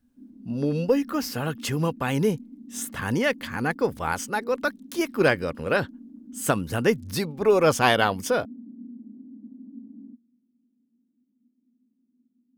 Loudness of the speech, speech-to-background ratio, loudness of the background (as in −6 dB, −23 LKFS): −25.0 LKFS, 19.5 dB, −44.5 LKFS